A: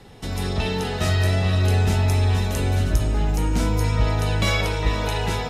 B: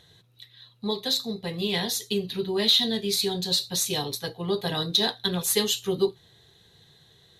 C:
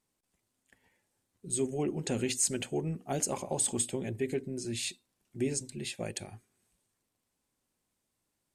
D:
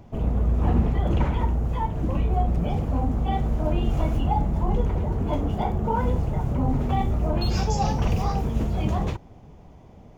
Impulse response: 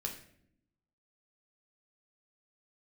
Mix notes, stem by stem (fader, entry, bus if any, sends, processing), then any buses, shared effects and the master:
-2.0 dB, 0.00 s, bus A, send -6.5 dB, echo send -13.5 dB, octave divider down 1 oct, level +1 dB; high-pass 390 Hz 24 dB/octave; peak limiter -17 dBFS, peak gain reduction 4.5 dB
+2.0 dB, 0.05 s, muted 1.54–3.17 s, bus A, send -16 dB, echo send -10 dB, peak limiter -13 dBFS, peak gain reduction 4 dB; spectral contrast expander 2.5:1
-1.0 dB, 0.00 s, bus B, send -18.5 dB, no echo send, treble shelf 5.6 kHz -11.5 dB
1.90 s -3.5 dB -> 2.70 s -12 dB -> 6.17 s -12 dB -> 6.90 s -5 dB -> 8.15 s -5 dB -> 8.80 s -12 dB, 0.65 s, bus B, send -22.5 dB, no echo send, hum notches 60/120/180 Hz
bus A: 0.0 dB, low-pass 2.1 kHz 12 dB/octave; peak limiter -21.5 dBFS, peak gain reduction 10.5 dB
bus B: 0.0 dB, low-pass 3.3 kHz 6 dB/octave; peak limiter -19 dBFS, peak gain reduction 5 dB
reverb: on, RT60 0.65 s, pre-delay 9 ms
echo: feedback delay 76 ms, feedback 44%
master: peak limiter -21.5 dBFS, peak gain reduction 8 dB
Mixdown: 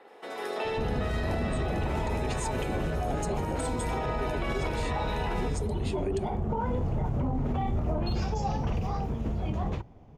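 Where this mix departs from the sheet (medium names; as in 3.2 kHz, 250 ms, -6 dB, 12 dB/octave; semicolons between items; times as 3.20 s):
stem C: missing treble shelf 5.6 kHz -11.5 dB; stem D -3.5 dB -> +3.5 dB; reverb return -8.5 dB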